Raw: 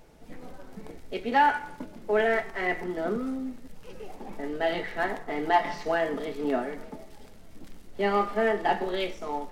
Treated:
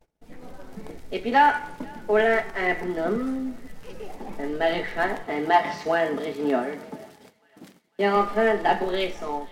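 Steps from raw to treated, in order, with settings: 5.24–8.15 s: high-pass 51 Hz -> 160 Hz 24 dB/octave; gate -51 dBFS, range -25 dB; level rider gain up to 5.5 dB; thinning echo 499 ms, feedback 59%, high-pass 980 Hz, level -24 dB; trim -1.5 dB

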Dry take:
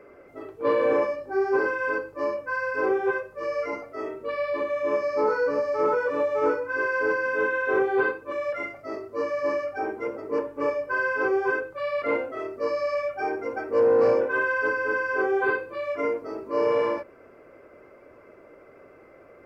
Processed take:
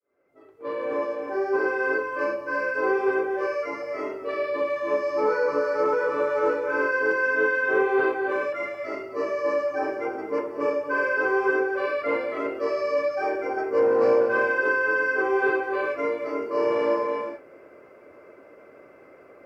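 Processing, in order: fade-in on the opening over 1.85 s; high-pass 160 Hz 6 dB/octave; on a send: reverberation, pre-delay 3 ms, DRR 4 dB

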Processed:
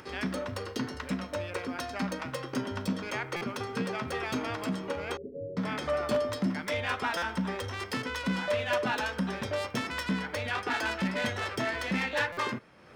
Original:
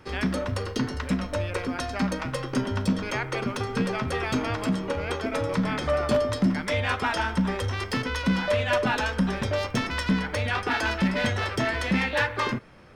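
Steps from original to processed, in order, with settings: tracing distortion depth 0.032 ms; high-pass 180 Hz 6 dB/octave; upward compressor, threshold -39 dBFS; 5.17–5.57 s: rippled Chebyshev low-pass 570 Hz, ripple 9 dB; buffer glitch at 3.36/7.17/12.32 s, samples 256, times 8; trim -4.5 dB

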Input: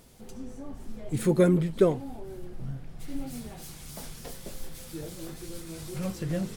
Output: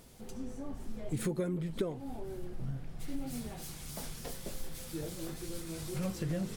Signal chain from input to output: compression 16:1, threshold -29 dBFS, peak gain reduction 15 dB; trim -1 dB

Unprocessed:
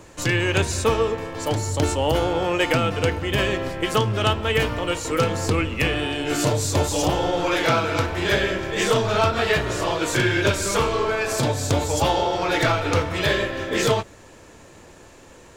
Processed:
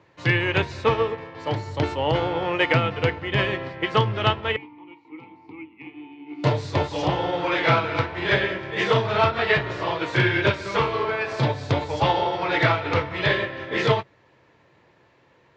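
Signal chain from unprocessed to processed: 4.56–6.44 s: vowel filter u; cabinet simulation 100–4400 Hz, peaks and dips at 130 Hz +7 dB, 240 Hz -4 dB, 970 Hz +4 dB, 2 kHz +6 dB; upward expansion 1.5:1, over -39 dBFS

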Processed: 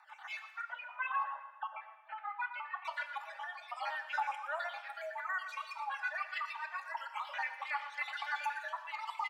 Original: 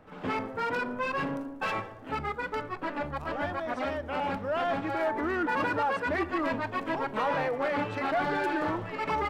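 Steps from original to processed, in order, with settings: random holes in the spectrogram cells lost 54%; 0.61–2.85 s: Bessel low-pass 1.9 kHz, order 8; reverb removal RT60 1.8 s; steep high-pass 730 Hz 72 dB/octave; comb 3.4 ms, depth 56%; compression, threshold -34 dBFS, peak gain reduction 11 dB; rotary cabinet horn 0.65 Hz, later 6.7 Hz, at 5.13 s; feedback delay 118 ms, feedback 41%, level -13.5 dB; plate-style reverb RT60 1.2 s, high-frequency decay 0.95×, DRR 8.5 dB; trim +3.5 dB

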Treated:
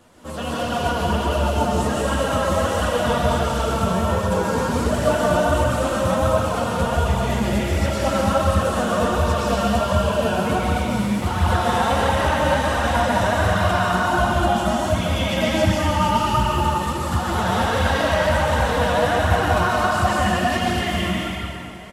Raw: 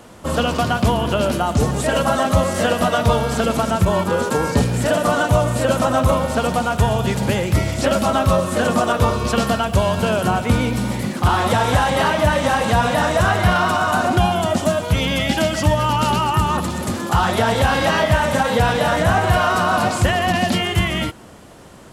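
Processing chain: speakerphone echo 170 ms, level -8 dB; chorus voices 2, 0.49 Hz, delay 12 ms, depth 2.6 ms; plate-style reverb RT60 2.6 s, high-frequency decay 0.85×, pre-delay 115 ms, DRR -5.5 dB; flange 1.4 Hz, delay 0.5 ms, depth 5.4 ms, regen +54%; trim -2.5 dB

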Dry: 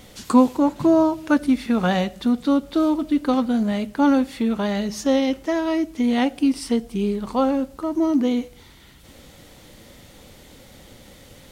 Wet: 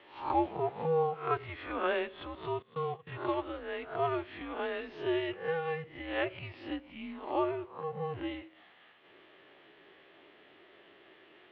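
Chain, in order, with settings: reverse spectral sustain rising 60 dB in 0.43 s; 2.62–3.07 s: gate -19 dBFS, range -18 dB; mistuned SSB -170 Hz 510–3200 Hz; trim -7.5 dB

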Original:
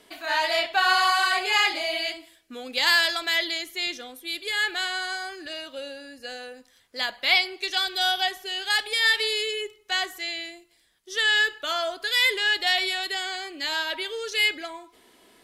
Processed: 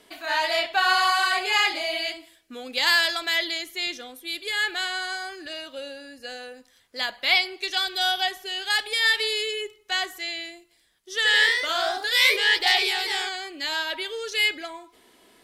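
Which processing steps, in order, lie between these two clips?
11.14–13.33 s: ever faster or slower copies 83 ms, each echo +1 st, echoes 3

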